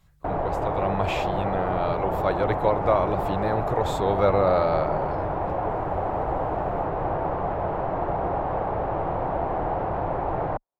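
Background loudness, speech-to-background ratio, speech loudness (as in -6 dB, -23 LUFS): -27.5 LUFS, 1.0 dB, -26.5 LUFS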